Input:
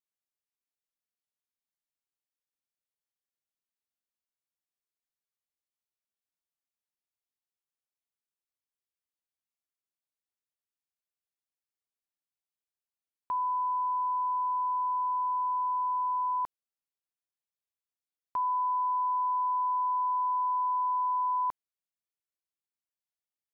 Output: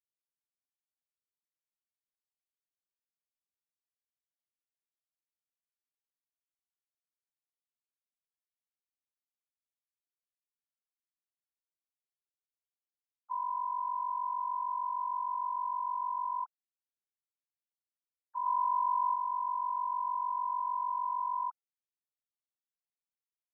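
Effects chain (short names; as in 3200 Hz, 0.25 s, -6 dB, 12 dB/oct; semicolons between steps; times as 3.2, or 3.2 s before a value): sine-wave speech; 18.46–19.15 dynamic EQ 990 Hz, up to +4 dB, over -38 dBFS; gain -5 dB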